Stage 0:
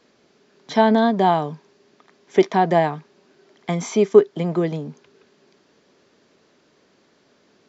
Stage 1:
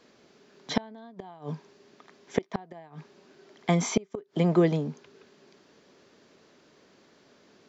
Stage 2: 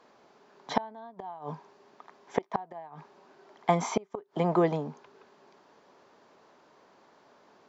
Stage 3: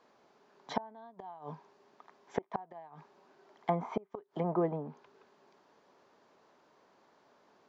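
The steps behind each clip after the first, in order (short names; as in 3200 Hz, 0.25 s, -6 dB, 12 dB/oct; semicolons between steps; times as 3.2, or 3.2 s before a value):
flipped gate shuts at -10 dBFS, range -30 dB
bell 900 Hz +15 dB 1.4 oct; gain -7 dB
treble ducked by the level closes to 1200 Hz, closed at -25 dBFS; gain -6 dB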